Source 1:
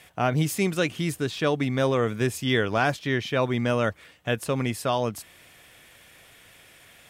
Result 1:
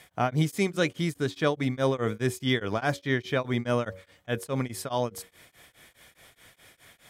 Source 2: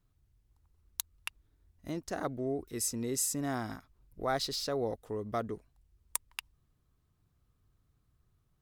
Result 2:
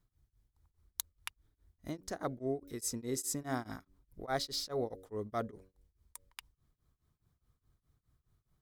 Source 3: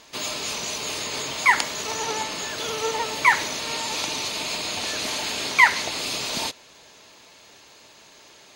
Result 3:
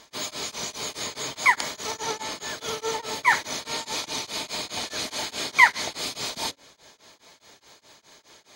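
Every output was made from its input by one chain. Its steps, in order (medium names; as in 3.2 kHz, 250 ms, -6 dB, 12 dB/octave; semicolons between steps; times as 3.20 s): band-stop 2.7 kHz, Q 8.1; de-hum 93.81 Hz, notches 6; tremolo of two beating tones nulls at 4.8 Hz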